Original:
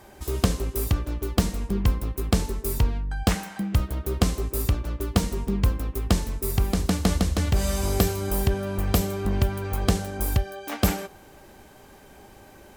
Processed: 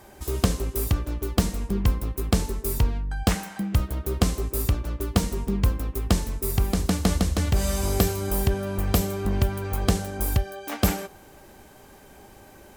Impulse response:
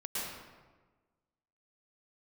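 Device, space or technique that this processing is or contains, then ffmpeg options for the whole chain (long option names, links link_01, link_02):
exciter from parts: -filter_complex "[0:a]asplit=2[link_01][link_02];[link_02]highpass=4900,asoftclip=type=tanh:threshold=-35.5dB,volume=-9.5dB[link_03];[link_01][link_03]amix=inputs=2:normalize=0"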